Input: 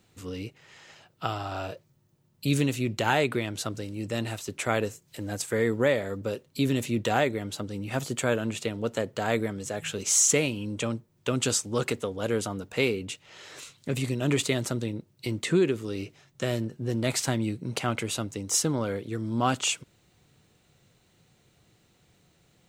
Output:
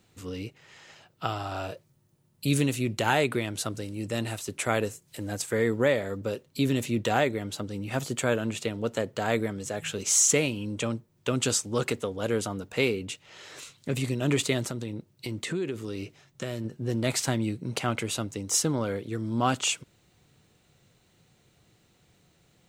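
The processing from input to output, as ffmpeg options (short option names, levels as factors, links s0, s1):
-filter_complex "[0:a]asettb=1/sr,asplit=3[s0][s1][s2];[s0]atrim=end=1.374[s3];[s1]atrim=start=1.37:end=5.32,asetpts=PTS-STARTPTS,afade=t=in:d=0.004:c=qsin,afade=t=out:st=3.946:d=0.004:c=qsin,equalizer=f=10000:w=1.9:g=6[s4];[s2]atrim=start=5.316[s5];[s3][s4]acrossfade=d=0.004:c1=hsin:c2=qsin[s6];[s6][s5]acrossfade=d=0.004:c1=qsin:c2=hsin,asettb=1/sr,asplit=3[s7][s8][s9];[s7]atrim=end=14.644[s10];[s8]atrim=start=14.64:end=16.65,asetpts=PTS-STARTPTS,afade=t=in:d=0.004:c=qsin,afade=t=out:st=2.006:d=0.004:c=qsin,acompressor=threshold=0.0316:ratio=2.5:attack=3.2:release=140:knee=1:detection=peak[s11];[s9]atrim=start=16.646[s12];[s10][s11]acrossfade=d=0.004:c1=hsin:c2=qsin[s13];[s13][s12]acrossfade=d=0.004:c1=qsin:c2=hsin"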